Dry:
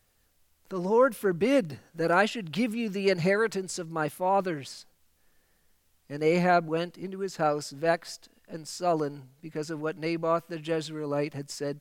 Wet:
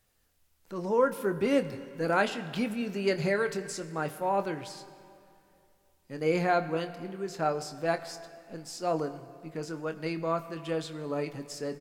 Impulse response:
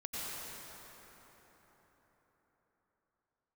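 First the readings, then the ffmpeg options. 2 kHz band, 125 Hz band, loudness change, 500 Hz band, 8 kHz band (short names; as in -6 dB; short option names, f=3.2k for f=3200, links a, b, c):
-2.5 dB, -3.0 dB, -3.0 dB, -3.0 dB, -3.0 dB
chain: -filter_complex "[0:a]asplit=2[a][b];[b]adelay=25,volume=-10.5dB[c];[a][c]amix=inputs=2:normalize=0,asplit=2[d][e];[1:a]atrim=start_sample=2205,asetrate=79380,aresample=44100[f];[e][f]afir=irnorm=-1:irlink=0,volume=-10.5dB[g];[d][g]amix=inputs=2:normalize=0,volume=-4dB"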